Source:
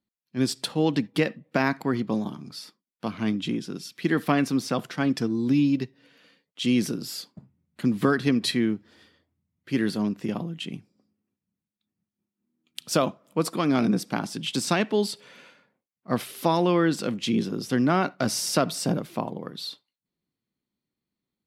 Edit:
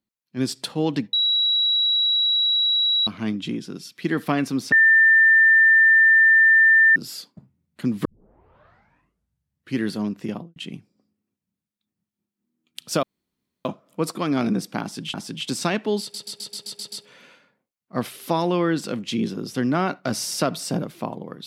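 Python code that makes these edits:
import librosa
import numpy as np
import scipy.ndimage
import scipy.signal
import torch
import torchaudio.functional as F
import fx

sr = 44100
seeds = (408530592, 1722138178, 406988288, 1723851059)

y = fx.studio_fade_out(x, sr, start_s=10.3, length_s=0.26)
y = fx.edit(y, sr, fx.bleep(start_s=1.13, length_s=1.94, hz=3890.0, db=-17.0),
    fx.bleep(start_s=4.72, length_s=2.24, hz=1790.0, db=-11.0),
    fx.tape_start(start_s=8.05, length_s=1.74),
    fx.insert_room_tone(at_s=13.03, length_s=0.62),
    fx.repeat(start_s=14.2, length_s=0.32, count=2),
    fx.stutter(start_s=15.07, slice_s=0.13, count=8), tone=tone)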